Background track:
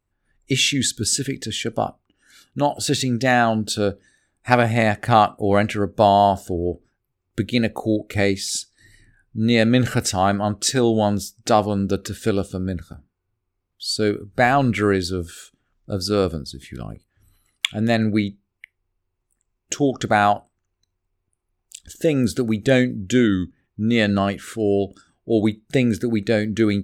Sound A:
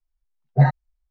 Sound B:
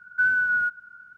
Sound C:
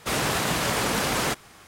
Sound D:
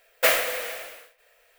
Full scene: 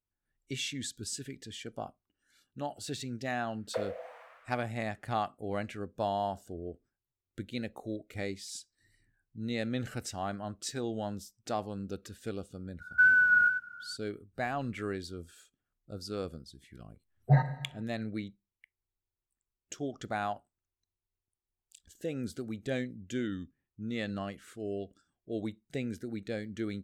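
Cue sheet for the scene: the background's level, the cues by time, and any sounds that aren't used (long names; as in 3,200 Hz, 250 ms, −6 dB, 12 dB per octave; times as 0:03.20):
background track −17.5 dB
0:03.51: mix in D −6 dB + envelope filter 500–1,400 Hz, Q 3.8, down, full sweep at −19 dBFS
0:12.80: mix in B −0.5 dB + delay that plays each chunk backwards 486 ms, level −11 dB
0:16.72: mix in A −8 dB + four-comb reverb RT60 1.1 s, combs from 33 ms, DRR 10 dB
not used: C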